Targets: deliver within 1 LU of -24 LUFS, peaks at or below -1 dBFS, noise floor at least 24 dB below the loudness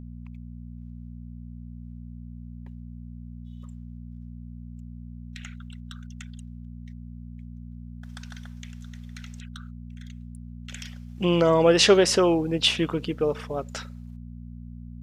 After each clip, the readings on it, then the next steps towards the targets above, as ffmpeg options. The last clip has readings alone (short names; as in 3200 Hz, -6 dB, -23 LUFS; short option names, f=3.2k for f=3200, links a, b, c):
hum 60 Hz; harmonics up to 240 Hz; hum level -38 dBFS; loudness -21.5 LUFS; peak -3.5 dBFS; loudness target -24.0 LUFS
-> -af "bandreject=f=60:t=h:w=4,bandreject=f=120:t=h:w=4,bandreject=f=180:t=h:w=4,bandreject=f=240:t=h:w=4"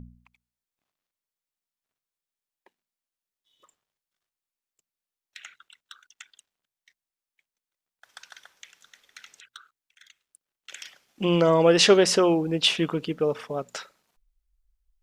hum none; loudness -21.5 LUFS; peak -3.5 dBFS; loudness target -24.0 LUFS
-> -af "volume=-2.5dB"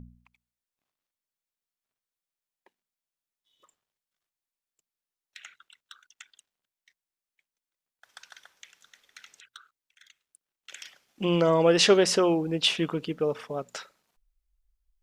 loudness -24.0 LUFS; peak -6.0 dBFS; noise floor -92 dBFS